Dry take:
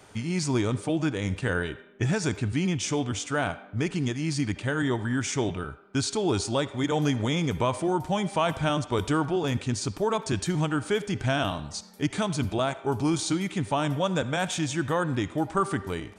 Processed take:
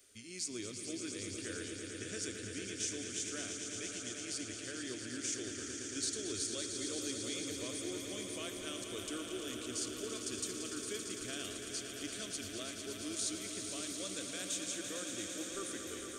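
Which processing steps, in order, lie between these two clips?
first-order pre-emphasis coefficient 0.8
phaser with its sweep stopped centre 360 Hz, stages 4
echo that builds up and dies away 113 ms, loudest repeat 5, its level −8.5 dB
level −3.5 dB

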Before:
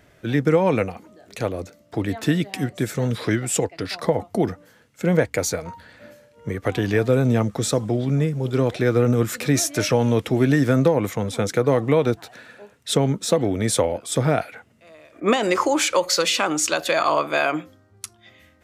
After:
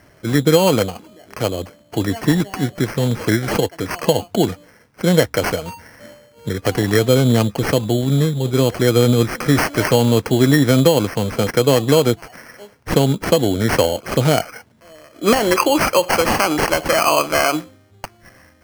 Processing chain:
decimation without filtering 12×
level +4.5 dB

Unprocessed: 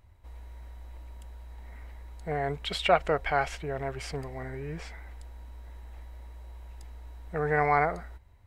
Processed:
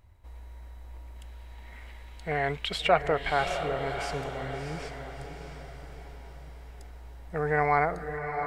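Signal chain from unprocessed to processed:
0:01.15–0:02.64: parametric band 3,000 Hz +6 dB → +14.5 dB 1.6 octaves
feedback delay with all-pass diffusion 666 ms, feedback 47%, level −7.5 dB

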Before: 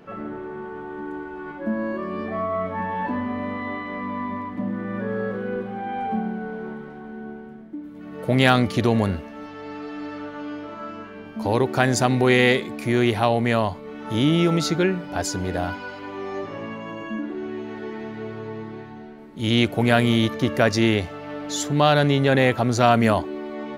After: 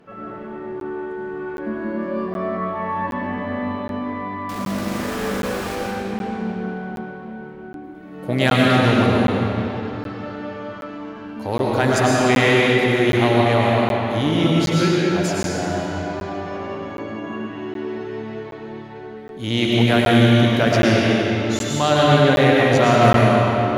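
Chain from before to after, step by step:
0:04.49–0:05.75: log-companded quantiser 2 bits
harmonic generator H 7 −31 dB, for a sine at −2 dBFS
comb and all-pass reverb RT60 3.4 s, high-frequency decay 0.8×, pre-delay 70 ms, DRR −5 dB
regular buffer underruns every 0.77 s, samples 512, zero, from 0:00.80
level −1.5 dB

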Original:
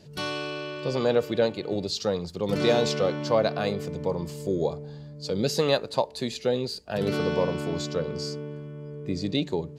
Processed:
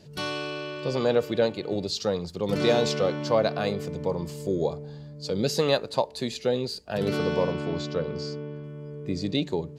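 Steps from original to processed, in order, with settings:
0:07.52–0:08.64: low-pass filter 4,600 Hz 12 dB per octave
floating-point word with a short mantissa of 8 bits

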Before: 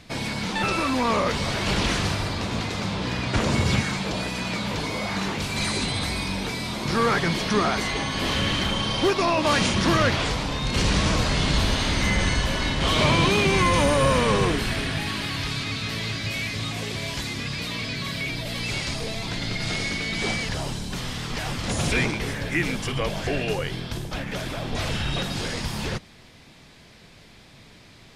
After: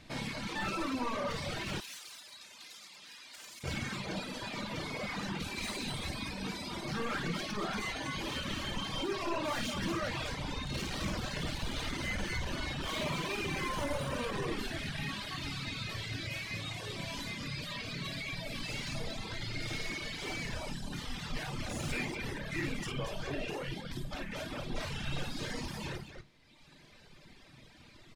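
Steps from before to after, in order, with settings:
soft clipping −26 dBFS, distortion −8 dB
parametric band 11,000 Hz −2.5 dB 1.9 octaves
loudspeakers that aren't time-aligned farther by 18 metres −5 dB, 80 metres −5 dB
on a send at −4.5 dB: convolution reverb RT60 0.25 s, pre-delay 3 ms
on the sum: reverb reduction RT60 1.5 s
0:01.80–0:03.64: first difference
level −7.5 dB

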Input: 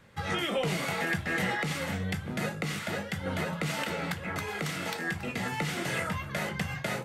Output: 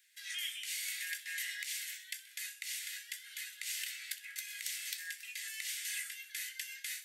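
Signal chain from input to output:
Butterworth high-pass 1,600 Hz 72 dB per octave
first difference
delay with a high-pass on its return 64 ms, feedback 56%, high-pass 2,200 Hz, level −16 dB
level +2.5 dB

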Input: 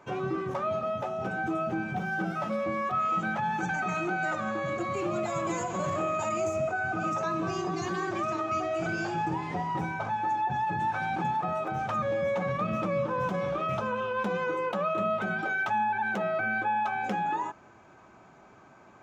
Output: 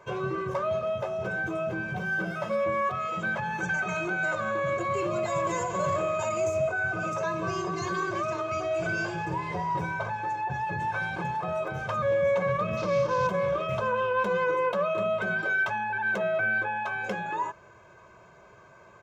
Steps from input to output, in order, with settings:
0:12.77–0:13.27: variable-slope delta modulation 32 kbit/s
comb filter 1.9 ms, depth 74%

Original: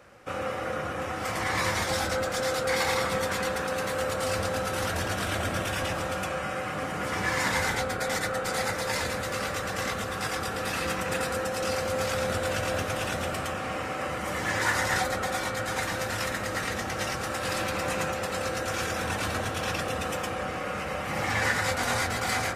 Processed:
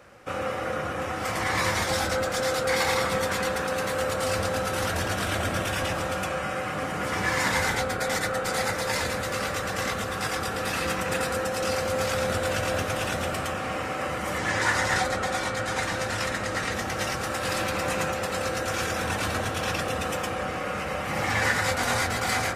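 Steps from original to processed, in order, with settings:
0:14.38–0:16.74: low-pass filter 9,800 Hz 12 dB per octave
level +2 dB

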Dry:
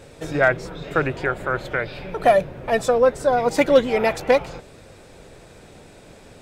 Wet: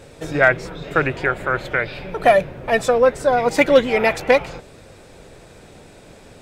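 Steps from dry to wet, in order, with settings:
dynamic equaliser 2,200 Hz, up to +5 dB, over −37 dBFS, Q 1.3
level +1.5 dB

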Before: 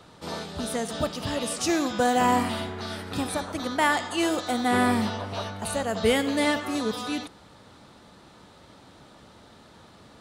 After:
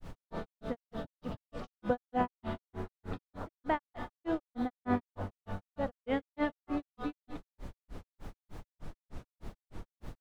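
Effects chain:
head-to-tape spacing loss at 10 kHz 44 dB
background noise brown −42 dBFS
in parallel at +2 dB: downward compressor, threshold −37 dBFS, peak gain reduction 16.5 dB
on the sum: granular cloud 160 ms, grains 3.3 per second, spray 100 ms, pitch spread up and down by 0 semitones
level −4 dB

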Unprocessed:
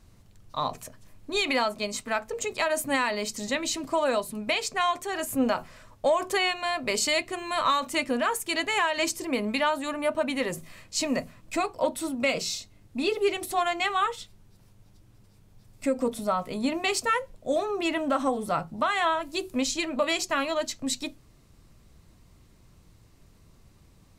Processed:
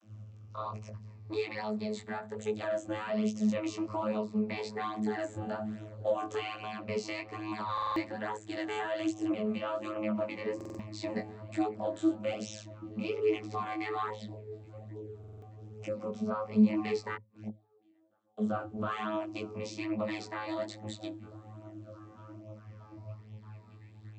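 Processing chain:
rippled gain that drifts along the octave scale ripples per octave 0.87, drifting −0.32 Hz, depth 8 dB
in parallel at −2 dB: downward compressor, threshold −36 dBFS, peak gain reduction 18.5 dB
on the sum: brickwall limiter −20 dBFS, peak gain reduction 9 dB
on a send: echo through a band-pass that steps 621 ms, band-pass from 160 Hz, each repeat 0.7 octaves, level −9 dB
0:17.14–0:18.37: on the sum: gate with flip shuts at −26 dBFS, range −39 dB
channel vocoder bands 32, saw 107 Hz
chorus effect 1.2 Hz, delay 19 ms, depth 2.3 ms
buffer that repeats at 0:07.73/0:10.56/0:15.19, samples 2,048, times 4

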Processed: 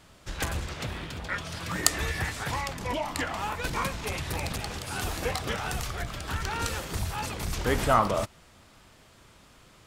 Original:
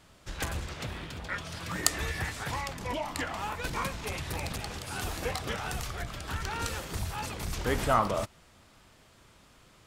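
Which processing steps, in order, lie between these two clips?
0:04.55–0:06.54: surface crackle 180 per second −51 dBFS
level +3 dB

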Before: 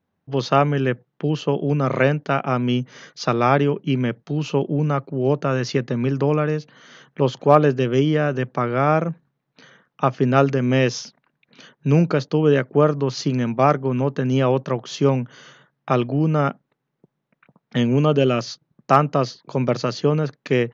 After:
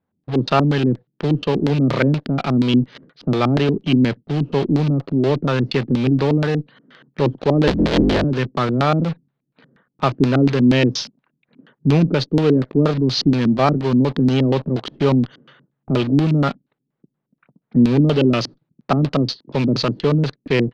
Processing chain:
0:07.67–0:08.24: sub-harmonics by changed cycles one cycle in 3, inverted
low-pass that shuts in the quiet parts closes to 1,700 Hz, open at −15.5 dBFS
in parallel at −11 dB: fuzz pedal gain 40 dB, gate −37 dBFS
on the sum: auto-filter low-pass square 4.2 Hz 280–4,100 Hz
level −1.5 dB

